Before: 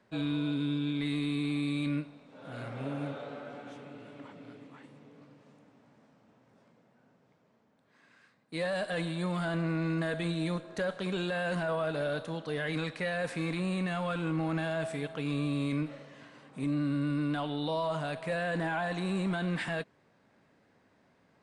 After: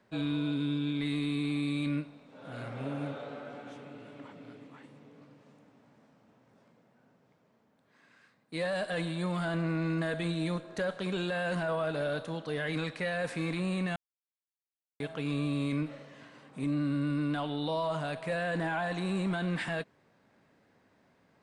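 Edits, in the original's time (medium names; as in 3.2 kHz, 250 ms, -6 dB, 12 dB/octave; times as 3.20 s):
13.96–15.00 s: mute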